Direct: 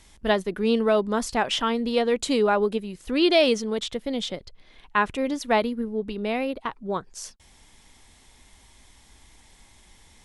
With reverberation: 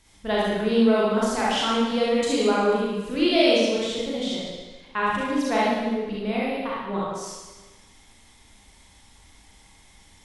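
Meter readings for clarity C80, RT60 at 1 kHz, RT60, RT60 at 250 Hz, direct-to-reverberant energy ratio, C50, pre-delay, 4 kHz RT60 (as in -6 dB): 1.0 dB, 1.3 s, 1.3 s, 1.3 s, -7.0 dB, -3.5 dB, 35 ms, 1.2 s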